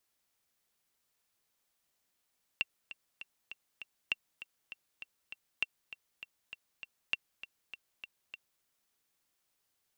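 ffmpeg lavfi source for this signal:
-f lavfi -i "aevalsrc='pow(10,(-16.5-14.5*gte(mod(t,5*60/199),60/199))/20)*sin(2*PI*2730*mod(t,60/199))*exp(-6.91*mod(t,60/199)/0.03)':d=6.03:s=44100"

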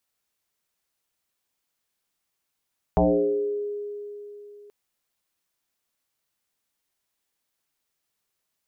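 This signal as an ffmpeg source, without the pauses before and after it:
-f lavfi -i "aevalsrc='0.178*pow(10,-3*t/3.41)*sin(2*PI*412*t+3.8*pow(10,-3*t/1.17)*sin(2*PI*0.28*412*t))':d=1.73:s=44100"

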